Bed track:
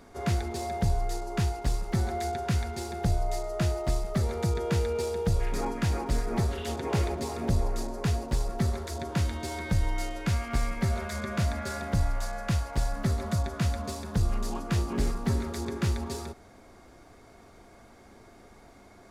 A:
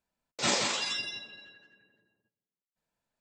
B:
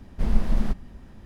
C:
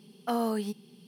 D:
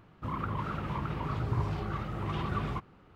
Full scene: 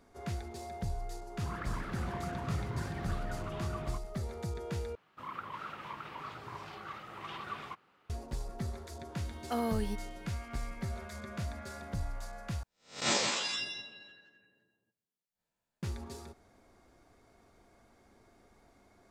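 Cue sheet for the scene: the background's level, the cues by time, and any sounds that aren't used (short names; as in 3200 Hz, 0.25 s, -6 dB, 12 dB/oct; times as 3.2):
bed track -10.5 dB
1.18 add D -8.5 dB + echoes that change speed 92 ms, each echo +4 st, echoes 2
4.95 replace with D -1 dB + HPF 1300 Hz 6 dB/oct
9.23 add C -4.5 dB
12.63 replace with A -3.5 dB + spectral swells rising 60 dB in 0.36 s
not used: B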